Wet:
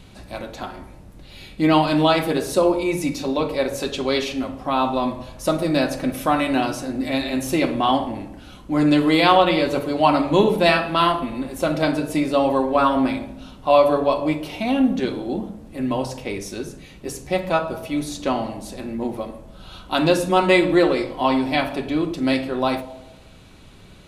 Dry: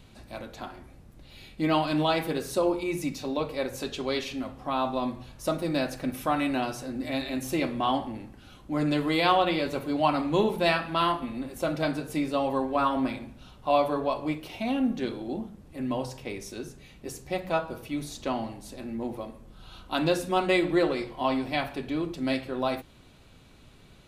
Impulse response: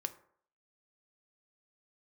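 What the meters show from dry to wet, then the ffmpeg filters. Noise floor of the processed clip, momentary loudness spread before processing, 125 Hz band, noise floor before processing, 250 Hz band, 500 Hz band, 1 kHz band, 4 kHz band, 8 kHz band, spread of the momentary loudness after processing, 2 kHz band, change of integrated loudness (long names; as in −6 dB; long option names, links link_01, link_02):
−44 dBFS, 15 LU, +7.0 dB, −53 dBFS, +8.0 dB, +8.5 dB, +7.5 dB, +7.5 dB, +7.5 dB, 15 LU, +7.5 dB, +8.0 dB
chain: -filter_complex "[0:a]asplit=2[link_01][link_02];[1:a]atrim=start_sample=2205,asetrate=23814,aresample=44100[link_03];[link_02][link_03]afir=irnorm=-1:irlink=0,volume=6.5dB[link_04];[link_01][link_04]amix=inputs=2:normalize=0,volume=-4dB"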